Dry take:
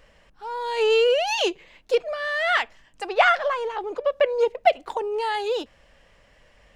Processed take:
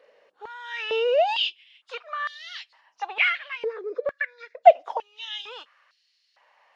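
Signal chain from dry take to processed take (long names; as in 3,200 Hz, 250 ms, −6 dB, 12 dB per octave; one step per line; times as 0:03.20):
hearing-aid frequency compression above 2,800 Hz 1.5 to 1
0:03.64–0:04.65: phaser with its sweep stopped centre 3,000 Hz, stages 6
high-pass on a step sequencer 2.2 Hz 470–4,400 Hz
level −5.5 dB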